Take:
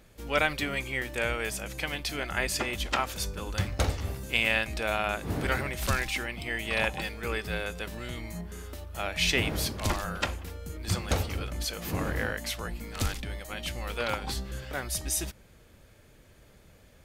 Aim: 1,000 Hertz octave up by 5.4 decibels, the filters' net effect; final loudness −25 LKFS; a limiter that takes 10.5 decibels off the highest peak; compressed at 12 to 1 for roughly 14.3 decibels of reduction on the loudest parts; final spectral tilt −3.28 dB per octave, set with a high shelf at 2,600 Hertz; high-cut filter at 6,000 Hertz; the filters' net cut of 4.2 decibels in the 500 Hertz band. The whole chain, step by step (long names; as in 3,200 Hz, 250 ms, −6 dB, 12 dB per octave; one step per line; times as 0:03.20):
low-pass filter 6,000 Hz
parametric band 500 Hz −8.5 dB
parametric band 1,000 Hz +9 dB
high-shelf EQ 2,600 Hz +5 dB
downward compressor 12 to 1, threshold −33 dBFS
level +15 dB
brickwall limiter −13.5 dBFS